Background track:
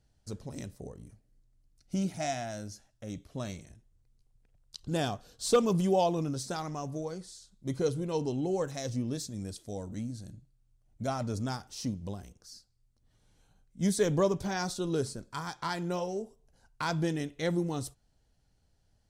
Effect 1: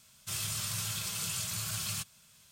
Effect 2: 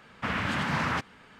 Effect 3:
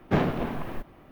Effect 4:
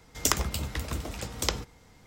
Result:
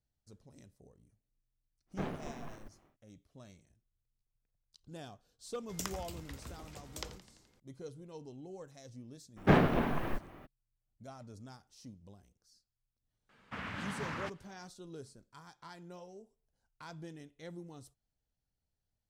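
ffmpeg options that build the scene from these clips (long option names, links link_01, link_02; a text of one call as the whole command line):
ffmpeg -i bed.wav -i cue0.wav -i cue1.wav -i cue2.wav -i cue3.wav -filter_complex "[3:a]asplit=2[link_01][link_02];[0:a]volume=-17dB[link_03];[link_01]aeval=exprs='if(lt(val(0),0),0.447*val(0),val(0))':channel_layout=same[link_04];[4:a]asplit=8[link_05][link_06][link_07][link_08][link_09][link_10][link_11][link_12];[link_06]adelay=85,afreqshift=-93,volume=-15.5dB[link_13];[link_07]adelay=170,afreqshift=-186,volume=-19.4dB[link_14];[link_08]adelay=255,afreqshift=-279,volume=-23.3dB[link_15];[link_09]adelay=340,afreqshift=-372,volume=-27.1dB[link_16];[link_10]adelay=425,afreqshift=-465,volume=-31dB[link_17];[link_11]adelay=510,afreqshift=-558,volume=-34.9dB[link_18];[link_12]adelay=595,afreqshift=-651,volume=-38.8dB[link_19];[link_05][link_13][link_14][link_15][link_16][link_17][link_18][link_19]amix=inputs=8:normalize=0[link_20];[link_02]equalizer=frequency=1600:width=1.3:gain=2.5[link_21];[link_04]atrim=end=1.11,asetpts=PTS-STARTPTS,volume=-12.5dB,afade=type=in:duration=0.1,afade=type=out:start_time=1.01:duration=0.1,adelay=1860[link_22];[link_20]atrim=end=2.06,asetpts=PTS-STARTPTS,volume=-15dB,afade=type=in:duration=0.004:curve=hsin,afade=type=out:start_time=2.056:duration=0.004:curve=hsin,adelay=5540[link_23];[link_21]atrim=end=1.11,asetpts=PTS-STARTPTS,volume=-1dB,afade=type=in:duration=0.02,afade=type=out:start_time=1.09:duration=0.02,adelay=9360[link_24];[2:a]atrim=end=1.39,asetpts=PTS-STARTPTS,volume=-12dB,afade=type=in:duration=0.004:curve=hsin,afade=type=out:start_time=1.386:duration=0.004:curve=hsin,adelay=13290[link_25];[link_03][link_22][link_23][link_24][link_25]amix=inputs=5:normalize=0" out.wav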